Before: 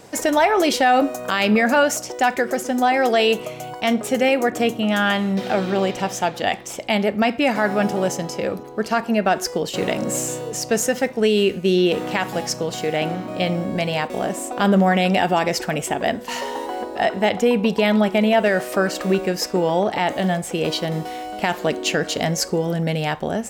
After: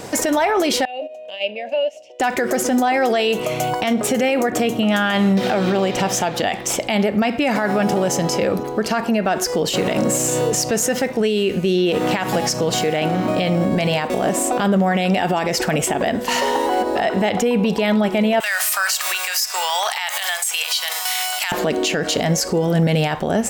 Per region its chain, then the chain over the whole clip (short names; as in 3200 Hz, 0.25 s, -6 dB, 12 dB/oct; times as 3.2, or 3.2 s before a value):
0.85–2.2 gate -20 dBFS, range -13 dB + compressor 2.5:1, threshold -28 dBFS + double band-pass 1300 Hz, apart 2.2 oct
18.4–21.52 HPF 870 Hz 24 dB/oct + tilt +4.5 dB/oct + compressor 4:1, threshold -26 dBFS
whole clip: compressor 2:1, threshold -25 dBFS; maximiser +20.5 dB; gain -9 dB